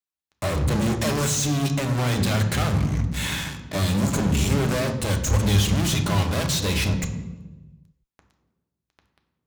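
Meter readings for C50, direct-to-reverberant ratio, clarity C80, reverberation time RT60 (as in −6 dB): 9.0 dB, 5.0 dB, 11.5 dB, 1.2 s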